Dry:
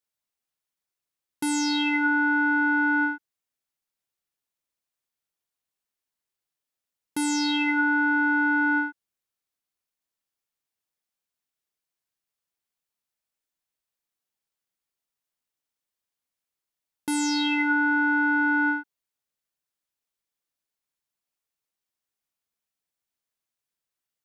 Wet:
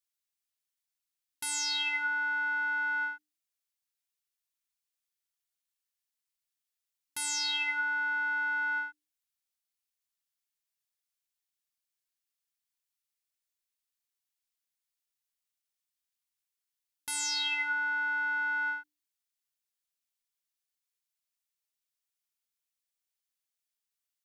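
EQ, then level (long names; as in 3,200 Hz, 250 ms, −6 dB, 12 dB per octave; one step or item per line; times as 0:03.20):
guitar amp tone stack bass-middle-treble 10-0-10
mains-hum notches 50/100/150/200/250/300/350/400/450 Hz
0.0 dB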